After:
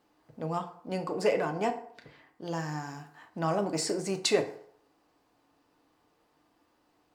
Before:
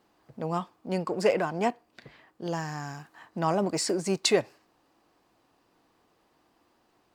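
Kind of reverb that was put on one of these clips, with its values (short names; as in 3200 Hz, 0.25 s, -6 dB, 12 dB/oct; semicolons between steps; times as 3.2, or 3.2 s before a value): FDN reverb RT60 0.63 s, low-frequency decay 0.75×, high-frequency decay 0.6×, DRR 5 dB; gain -3.5 dB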